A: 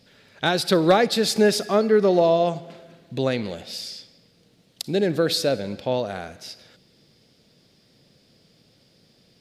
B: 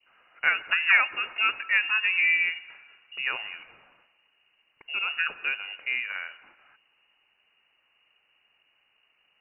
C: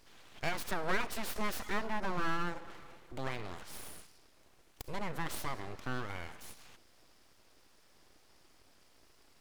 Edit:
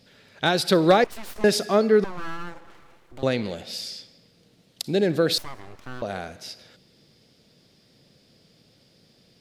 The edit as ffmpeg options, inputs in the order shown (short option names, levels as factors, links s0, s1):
-filter_complex "[2:a]asplit=3[s0][s1][s2];[0:a]asplit=4[s3][s4][s5][s6];[s3]atrim=end=1.042[s7];[s0]atrim=start=1.038:end=1.442[s8];[s4]atrim=start=1.438:end=2.042[s9];[s1]atrim=start=2.038:end=3.232[s10];[s5]atrim=start=3.228:end=5.382[s11];[s2]atrim=start=5.378:end=6.022[s12];[s6]atrim=start=6.018[s13];[s7][s8]acrossfade=d=0.004:c1=hsin:c2=hsin[s14];[s14][s9]acrossfade=d=0.004:c1=hsin:c2=hsin[s15];[s15][s10]acrossfade=d=0.004:c1=hsin:c2=hsin[s16];[s16][s11]acrossfade=d=0.004:c1=hsin:c2=hsin[s17];[s17][s12]acrossfade=d=0.004:c1=hsin:c2=hsin[s18];[s18][s13]acrossfade=d=0.004:c1=hsin:c2=hsin"